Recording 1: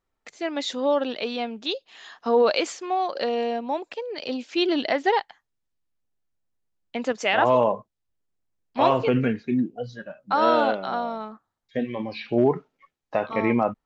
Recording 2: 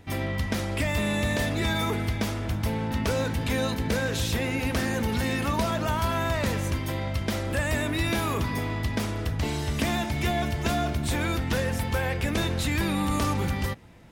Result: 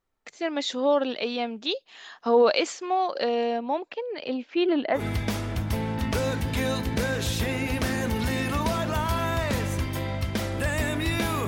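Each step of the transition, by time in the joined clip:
recording 1
0:03.57–0:05.05: low-pass filter 5,400 Hz → 1,600 Hz
0:04.99: continue with recording 2 from 0:01.92, crossfade 0.12 s

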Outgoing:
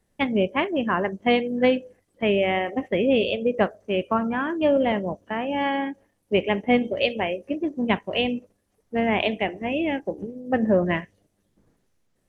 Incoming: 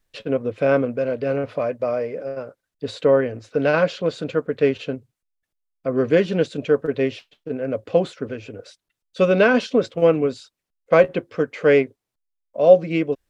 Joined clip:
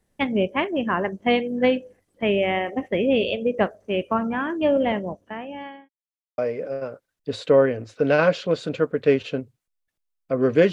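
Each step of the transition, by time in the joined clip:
outgoing
0:04.88–0:05.89: fade out linear
0:05.89–0:06.38: silence
0:06.38: continue with incoming from 0:01.93

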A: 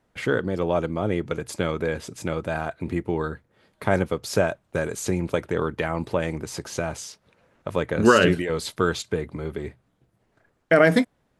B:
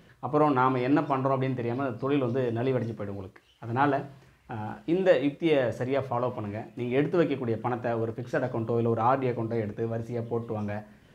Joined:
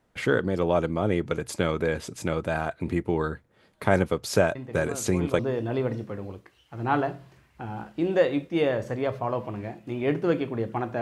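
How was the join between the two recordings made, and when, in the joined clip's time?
A
0:04.55: mix in B from 0:01.45 0.84 s −8 dB
0:05.39: continue with B from 0:02.29

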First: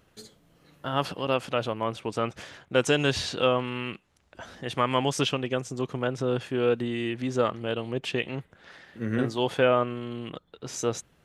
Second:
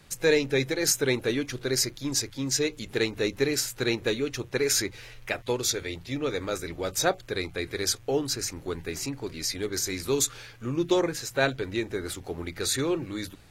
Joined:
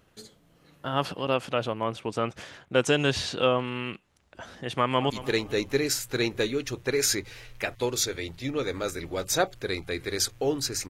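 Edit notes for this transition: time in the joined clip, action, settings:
first
0:04.74–0:05.10: delay throw 220 ms, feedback 40%, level −15.5 dB
0:05.10: continue with second from 0:02.77

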